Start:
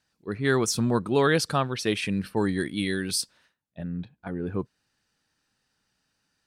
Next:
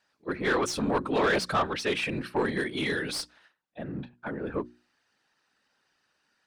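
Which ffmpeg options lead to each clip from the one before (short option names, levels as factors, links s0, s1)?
-filter_complex "[0:a]afftfilt=real='hypot(re,im)*cos(2*PI*random(0))':imag='hypot(re,im)*sin(2*PI*random(1))':win_size=512:overlap=0.75,asplit=2[s0][s1];[s1]highpass=f=720:p=1,volume=8.91,asoftclip=type=tanh:threshold=0.168[s2];[s0][s2]amix=inputs=2:normalize=0,lowpass=f=2000:p=1,volume=0.501,bandreject=f=60:t=h:w=6,bandreject=f=120:t=h:w=6,bandreject=f=180:t=h:w=6,bandreject=f=240:t=h:w=6,bandreject=f=300:t=h:w=6,bandreject=f=360:t=h:w=6"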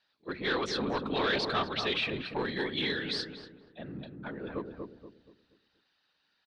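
-filter_complex "[0:a]lowpass=f=3900:t=q:w=3.8,asplit=2[s0][s1];[s1]adelay=238,lowpass=f=960:p=1,volume=0.631,asplit=2[s2][s3];[s3]adelay=238,lowpass=f=960:p=1,volume=0.39,asplit=2[s4][s5];[s5]adelay=238,lowpass=f=960:p=1,volume=0.39,asplit=2[s6][s7];[s7]adelay=238,lowpass=f=960:p=1,volume=0.39,asplit=2[s8][s9];[s9]adelay=238,lowpass=f=960:p=1,volume=0.39[s10];[s2][s4][s6][s8][s10]amix=inputs=5:normalize=0[s11];[s0][s11]amix=inputs=2:normalize=0,volume=0.501"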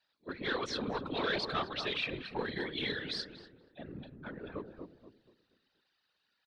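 -af "afftfilt=real='hypot(re,im)*cos(2*PI*random(0))':imag='hypot(re,im)*sin(2*PI*random(1))':win_size=512:overlap=0.75"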